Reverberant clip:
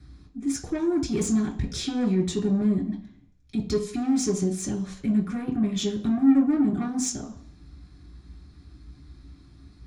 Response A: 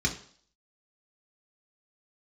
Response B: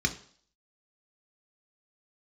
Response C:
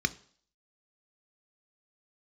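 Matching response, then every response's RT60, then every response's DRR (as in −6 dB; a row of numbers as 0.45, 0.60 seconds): A; 0.50, 0.50, 0.50 seconds; 0.0, 4.5, 11.5 decibels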